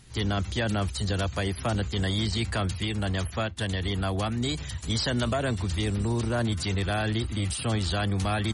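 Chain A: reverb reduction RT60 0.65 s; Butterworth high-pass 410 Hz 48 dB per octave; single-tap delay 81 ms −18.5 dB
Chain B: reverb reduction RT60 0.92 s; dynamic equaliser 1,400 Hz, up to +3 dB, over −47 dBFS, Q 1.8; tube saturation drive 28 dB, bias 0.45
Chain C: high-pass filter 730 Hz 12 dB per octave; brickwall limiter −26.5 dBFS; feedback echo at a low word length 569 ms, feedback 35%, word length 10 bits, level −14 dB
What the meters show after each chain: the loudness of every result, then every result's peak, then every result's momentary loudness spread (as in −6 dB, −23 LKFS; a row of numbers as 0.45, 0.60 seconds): −33.0, −34.0, −37.0 LKFS; −17.5, −25.5, −25.0 dBFS; 4, 2, 3 LU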